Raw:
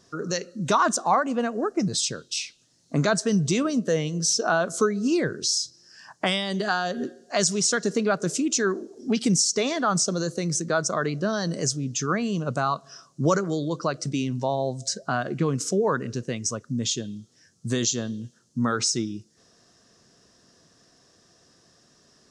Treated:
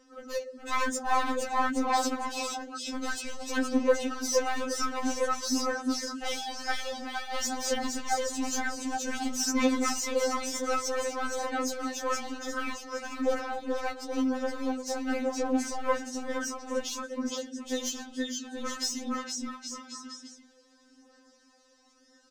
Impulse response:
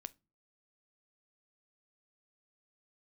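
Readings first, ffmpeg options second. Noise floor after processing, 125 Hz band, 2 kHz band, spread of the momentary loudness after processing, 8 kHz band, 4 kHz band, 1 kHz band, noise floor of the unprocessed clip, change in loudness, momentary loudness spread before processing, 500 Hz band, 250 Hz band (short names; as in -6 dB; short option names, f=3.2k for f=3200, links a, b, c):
-62 dBFS, under -25 dB, -4.0 dB, 8 LU, -7.5 dB, -6.0 dB, -3.0 dB, -62 dBFS, -6.0 dB, 8 LU, -5.0 dB, -5.5 dB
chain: -filter_complex "[0:a]highshelf=f=2.8k:g=-8.5,bandreject=f=50:t=h:w=6,bandreject=f=100:t=h:w=6,bandreject=f=150:t=h:w=6,bandreject=f=200:t=h:w=6,bandreject=f=250:t=h:w=6,bandreject=f=300:t=h:w=6,bandreject=f=350:t=h:w=6,bandreject=f=400:t=h:w=6,bandreject=f=450:t=h:w=6,aecho=1:1:470|822.5|1087|1285|1434:0.631|0.398|0.251|0.158|0.1,aeval=exprs='clip(val(0),-1,0.0447)':c=same,acrossover=split=280|3000[a][b][c];[a]acompressor=threshold=-45dB:ratio=3[d];[d][b][c]amix=inputs=3:normalize=0,aphaser=in_gain=1:out_gain=1:delay=3.3:decay=0.47:speed=0.52:type=sinusoidal,afftfilt=real='re*3.46*eq(mod(b,12),0)':imag='im*3.46*eq(mod(b,12),0)':win_size=2048:overlap=0.75"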